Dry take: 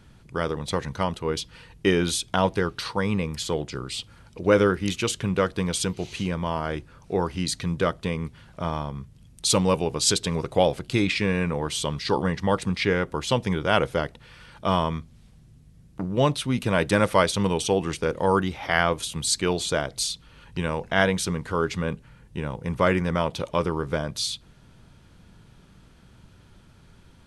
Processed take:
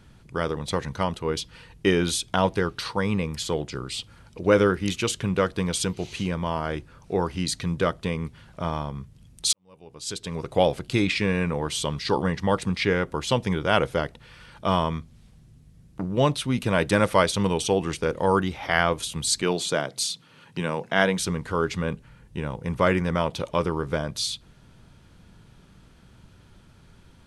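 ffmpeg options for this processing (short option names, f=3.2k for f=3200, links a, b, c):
-filter_complex "[0:a]asettb=1/sr,asplit=3[a][b][c];[a]atrim=end=19.424[d];[b]atrim=start=19.42:end=21.19,asetpts=PTS-STARTPTS,afade=t=in:d=0.004:c=qsin,afade=t=out:st=1.766:d=0.004:c=qsin,highpass=f=130:w=0.5412,highpass=f=130:w=1.3066[e];[c]atrim=start=21.186[f];[d][e]acrossfade=d=0.004:c1=hsin:c2=qsin[g];[g][f]acrossfade=d=0.004:c1=qsin:c2=hsin,asplit=2[h][i];[h]atrim=end=9.53,asetpts=PTS-STARTPTS,afade=t=out:st=9.526:d=0.004:c=hsin[j];[i]atrim=start=9.53,asetpts=PTS-STARTPTS,afade=t=in:d=1.09:c=qua[k];[j][k]concat=n=2:v=0:a=1"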